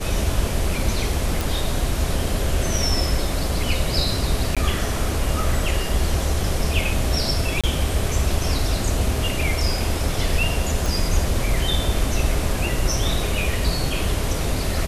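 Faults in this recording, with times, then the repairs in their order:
1.41 pop
4.55–4.57 gap 16 ms
7.61–7.64 gap 26 ms
10.86 pop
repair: de-click; interpolate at 4.55, 16 ms; interpolate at 7.61, 26 ms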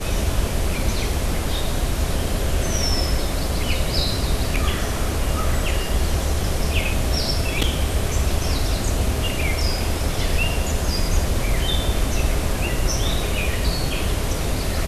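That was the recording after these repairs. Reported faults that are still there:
none

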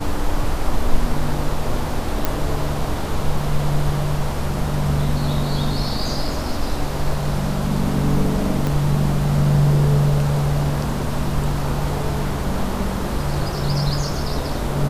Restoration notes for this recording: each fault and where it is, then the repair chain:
2.25 pop
8.67 pop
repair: de-click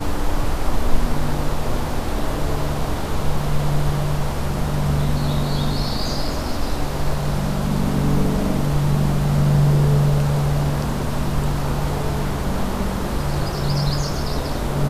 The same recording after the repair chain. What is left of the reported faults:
8.67 pop

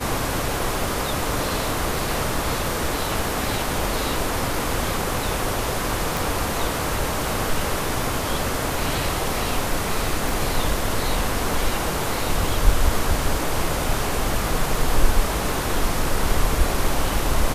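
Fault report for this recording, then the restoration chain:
6.17 pop
10.29 pop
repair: de-click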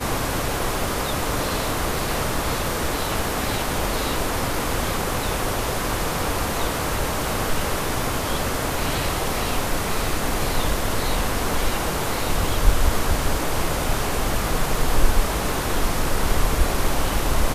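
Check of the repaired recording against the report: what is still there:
10.29 pop

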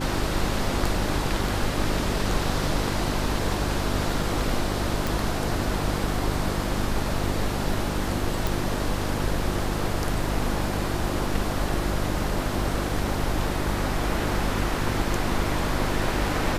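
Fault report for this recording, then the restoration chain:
hum 50 Hz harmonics 7 -30 dBFS
5.07 pop
8.47 pop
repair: de-click; de-hum 50 Hz, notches 7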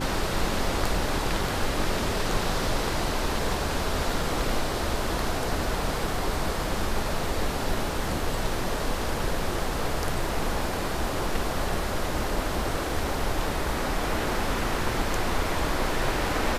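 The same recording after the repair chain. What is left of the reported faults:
none

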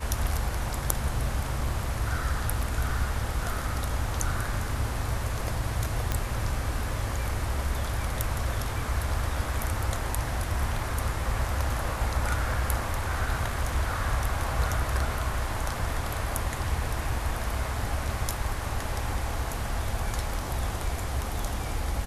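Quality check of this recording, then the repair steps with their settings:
6.12 pop -12 dBFS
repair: de-click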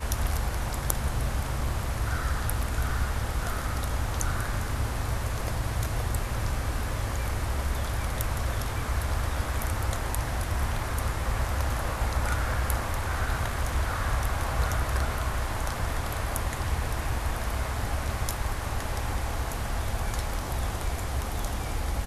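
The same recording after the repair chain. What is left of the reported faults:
none

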